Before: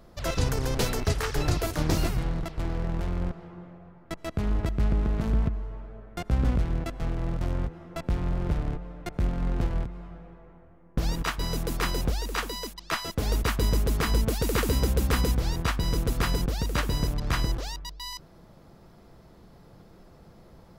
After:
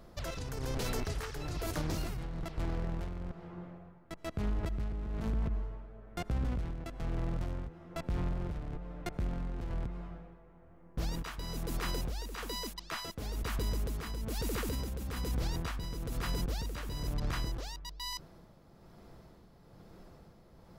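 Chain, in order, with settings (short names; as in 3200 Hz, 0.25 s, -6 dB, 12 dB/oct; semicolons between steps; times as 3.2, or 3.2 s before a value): limiter -24 dBFS, peak gain reduction 11.5 dB; tremolo 1.1 Hz, depth 51%; gain -1.5 dB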